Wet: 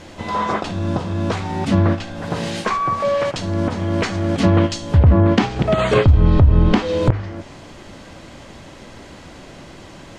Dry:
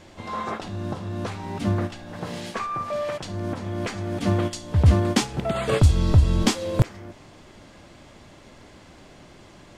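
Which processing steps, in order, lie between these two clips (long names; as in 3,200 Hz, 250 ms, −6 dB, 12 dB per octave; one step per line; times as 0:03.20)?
hum removal 53.06 Hz, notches 2
treble cut that deepens with the level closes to 1,600 Hz, closed at −14 dBFS
wrong playback speed 25 fps video run at 24 fps
boost into a limiter +12.5 dB
level −3.5 dB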